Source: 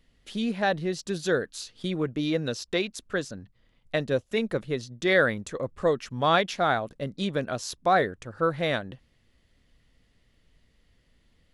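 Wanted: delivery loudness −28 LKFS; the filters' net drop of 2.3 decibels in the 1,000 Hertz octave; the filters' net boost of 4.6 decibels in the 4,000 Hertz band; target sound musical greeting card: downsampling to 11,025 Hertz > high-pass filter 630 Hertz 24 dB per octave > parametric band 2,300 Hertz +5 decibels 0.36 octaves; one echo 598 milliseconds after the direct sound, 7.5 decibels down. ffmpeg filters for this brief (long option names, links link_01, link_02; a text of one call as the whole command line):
ffmpeg -i in.wav -af "equalizer=frequency=1000:width_type=o:gain=-3,equalizer=frequency=4000:width_type=o:gain=5,aecho=1:1:598:0.422,aresample=11025,aresample=44100,highpass=frequency=630:width=0.5412,highpass=frequency=630:width=1.3066,equalizer=frequency=2300:width_type=o:width=0.36:gain=5,volume=1.5dB" out.wav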